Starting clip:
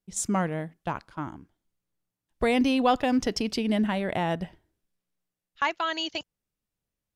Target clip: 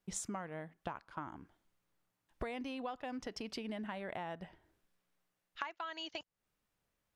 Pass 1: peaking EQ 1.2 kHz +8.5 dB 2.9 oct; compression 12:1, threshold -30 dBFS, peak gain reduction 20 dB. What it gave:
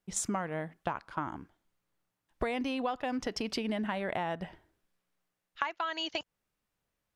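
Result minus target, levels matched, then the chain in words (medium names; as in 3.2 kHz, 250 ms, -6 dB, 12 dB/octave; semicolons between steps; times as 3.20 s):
compression: peak gain reduction -8.5 dB
peaking EQ 1.2 kHz +8.5 dB 2.9 oct; compression 12:1, threshold -39.5 dBFS, peak gain reduction 28.5 dB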